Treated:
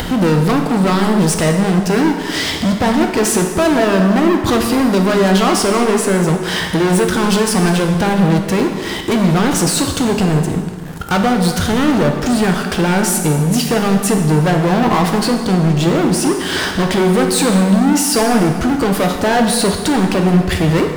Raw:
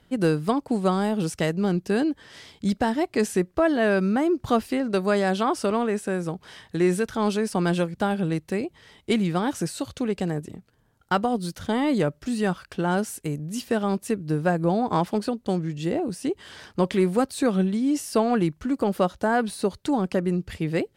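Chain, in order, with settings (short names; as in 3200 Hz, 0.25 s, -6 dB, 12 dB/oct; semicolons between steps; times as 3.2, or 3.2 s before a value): in parallel at +2 dB: limiter -19.5 dBFS, peak gain reduction 12 dB; on the sum: upward compressor, threshold -21 dBFS; sample leveller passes 5; plate-style reverb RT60 1.7 s, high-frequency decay 0.8×, DRR 3 dB; gain -6 dB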